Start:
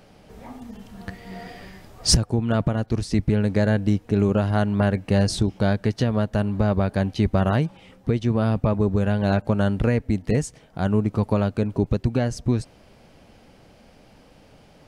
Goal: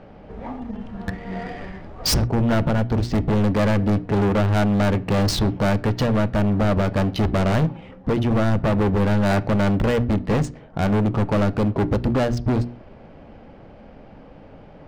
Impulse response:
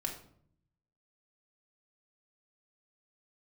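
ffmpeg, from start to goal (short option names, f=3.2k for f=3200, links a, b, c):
-filter_complex "[0:a]bandreject=f=60:t=h:w=6,bandreject=f=120:t=h:w=6,bandreject=f=180:t=h:w=6,bandreject=f=240:t=h:w=6,bandreject=f=300:t=h:w=6,bandreject=f=360:t=h:w=6,adynamicsmooth=sensitivity=6:basefreq=1.8k,asoftclip=type=hard:threshold=-25dB,asplit=2[a][b];[1:a]atrim=start_sample=2205,atrim=end_sample=6174,lowpass=4.6k[c];[b][c]afir=irnorm=-1:irlink=0,volume=-13dB[d];[a][d]amix=inputs=2:normalize=0,volume=7dB"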